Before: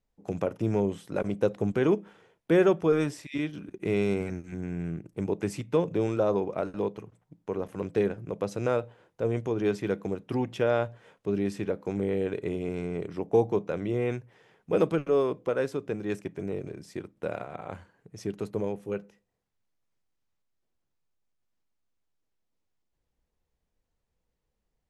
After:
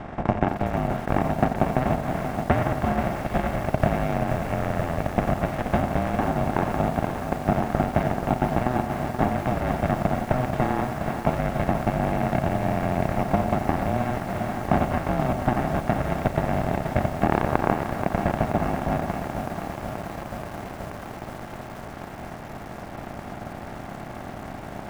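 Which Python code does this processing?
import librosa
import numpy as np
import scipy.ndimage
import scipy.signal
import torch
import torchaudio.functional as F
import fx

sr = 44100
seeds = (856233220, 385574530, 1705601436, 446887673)

p1 = fx.bin_compress(x, sr, power=0.2)
p2 = fx.transient(p1, sr, attack_db=9, sustain_db=-4)
p3 = fx.tilt_eq(p2, sr, slope=3.5)
p4 = p3 * np.sin(2.0 * np.pi * 250.0 * np.arange(len(p3)) / sr)
p5 = scipy.signal.sosfilt(scipy.signal.butter(2, 1700.0, 'lowpass', fs=sr, output='sos'), p4)
p6 = fx.low_shelf(p5, sr, hz=160.0, db=5.0)
p7 = p6 + fx.echo_single(p6, sr, ms=90, db=-13.0, dry=0)
p8 = fx.echo_crushed(p7, sr, ms=480, feedback_pct=80, bits=6, wet_db=-8.5)
y = p8 * librosa.db_to_amplitude(-4.0)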